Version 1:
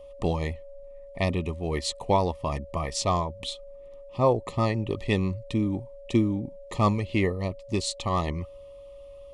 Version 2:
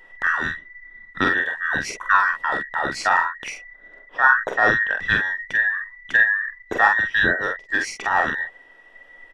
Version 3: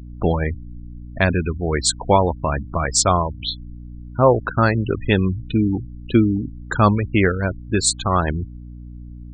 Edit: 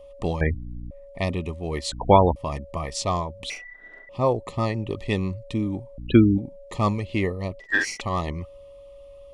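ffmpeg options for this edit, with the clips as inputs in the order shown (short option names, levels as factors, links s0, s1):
-filter_complex "[2:a]asplit=3[s0][s1][s2];[1:a]asplit=2[s3][s4];[0:a]asplit=6[s5][s6][s7][s8][s9][s10];[s5]atrim=end=0.412[s11];[s0]atrim=start=0.408:end=0.912[s12];[s6]atrim=start=0.908:end=1.922[s13];[s1]atrim=start=1.918:end=2.362[s14];[s7]atrim=start=2.358:end=3.502[s15];[s3]atrim=start=3.498:end=4.092[s16];[s8]atrim=start=4.088:end=5.982[s17];[s2]atrim=start=5.978:end=6.382[s18];[s9]atrim=start=6.378:end=7.602[s19];[s4]atrim=start=7.598:end=8.012[s20];[s10]atrim=start=8.008[s21];[s11][s12]acrossfade=d=0.004:c1=hsin:c2=hsin[s22];[s22][s13]acrossfade=d=0.004:c1=hsin:c2=hsin[s23];[s23][s14]acrossfade=d=0.004:c1=hsin:c2=hsin[s24];[s24][s15]acrossfade=d=0.004:c1=hsin:c2=hsin[s25];[s25][s16]acrossfade=d=0.004:c1=hsin:c2=hsin[s26];[s26][s17]acrossfade=d=0.004:c1=hsin:c2=hsin[s27];[s27][s18]acrossfade=d=0.004:c1=hsin:c2=hsin[s28];[s28][s19]acrossfade=d=0.004:c1=hsin:c2=hsin[s29];[s29][s20]acrossfade=d=0.004:c1=hsin:c2=hsin[s30];[s30][s21]acrossfade=d=0.004:c1=hsin:c2=hsin"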